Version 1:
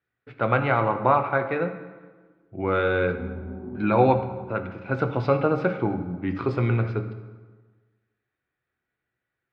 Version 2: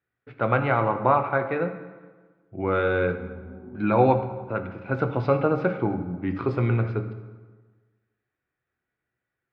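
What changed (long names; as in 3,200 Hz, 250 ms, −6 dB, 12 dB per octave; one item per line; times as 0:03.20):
background −6.0 dB
master: add high-shelf EQ 3,600 Hz −7 dB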